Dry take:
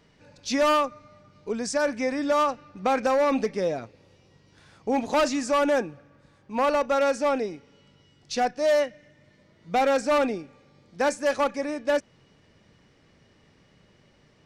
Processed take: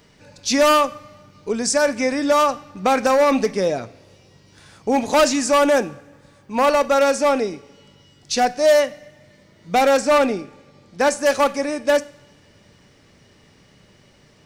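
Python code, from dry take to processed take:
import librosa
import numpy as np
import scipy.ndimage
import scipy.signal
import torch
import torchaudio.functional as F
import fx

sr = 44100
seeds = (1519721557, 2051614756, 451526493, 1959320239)

y = fx.high_shelf(x, sr, hz=6700.0, db=fx.steps((0.0, 11.0), (9.98, 6.0), (11.2, 11.5)))
y = fx.rev_double_slope(y, sr, seeds[0], early_s=0.5, late_s=1.7, knee_db=-17, drr_db=14.0)
y = y * 10.0 ** (6.0 / 20.0)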